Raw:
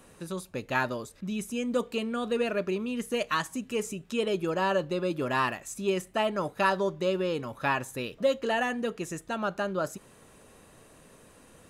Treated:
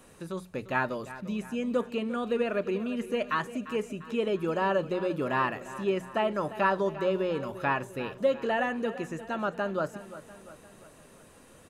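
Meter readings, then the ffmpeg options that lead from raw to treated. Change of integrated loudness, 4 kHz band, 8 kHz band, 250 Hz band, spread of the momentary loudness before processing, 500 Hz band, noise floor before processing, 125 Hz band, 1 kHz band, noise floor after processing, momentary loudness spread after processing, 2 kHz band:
0.0 dB, -5.0 dB, under -10 dB, 0.0 dB, 8 LU, 0.0 dB, -56 dBFS, -0.5 dB, 0.0 dB, -55 dBFS, 9 LU, -1.0 dB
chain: -filter_complex "[0:a]bandreject=f=60:t=h:w=6,bandreject=f=120:t=h:w=6,bandreject=f=180:t=h:w=6,acrossover=split=2800[a][b];[b]acompressor=threshold=-53dB:ratio=4:attack=1:release=60[c];[a][c]amix=inputs=2:normalize=0,aecho=1:1:348|696|1044|1392|1740:0.178|0.0925|0.0481|0.025|0.013"

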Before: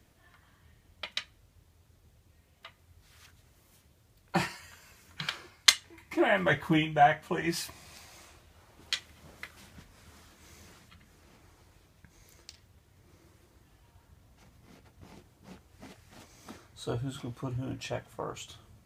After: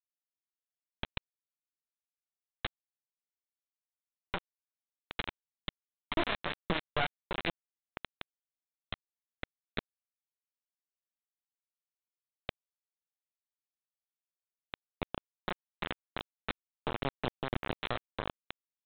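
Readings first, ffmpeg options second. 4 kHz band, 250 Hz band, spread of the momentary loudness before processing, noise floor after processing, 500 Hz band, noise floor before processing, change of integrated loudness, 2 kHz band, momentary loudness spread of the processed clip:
-8.5 dB, -7.5 dB, 22 LU, under -85 dBFS, -7.0 dB, -64 dBFS, -9.5 dB, -6.5 dB, 15 LU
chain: -af "acompressor=threshold=-46dB:ratio=20,aeval=exprs='0.0596*(cos(1*acos(clip(val(0)/0.0596,-1,1)))-cos(1*PI/2))+0.00133*(cos(3*acos(clip(val(0)/0.0596,-1,1)))-cos(3*PI/2))+0.0211*(cos(6*acos(clip(val(0)/0.0596,-1,1)))-cos(6*PI/2))+0.0015*(cos(7*acos(clip(val(0)/0.0596,-1,1)))-cos(7*PI/2))+0.00106*(cos(8*acos(clip(val(0)/0.0596,-1,1)))-cos(8*PI/2))':c=same,aresample=8000,acrusher=bits=6:mix=0:aa=0.000001,aresample=44100,alimiter=level_in=12dB:limit=-24dB:level=0:latency=1:release=125,volume=-12dB,volume=17.5dB"

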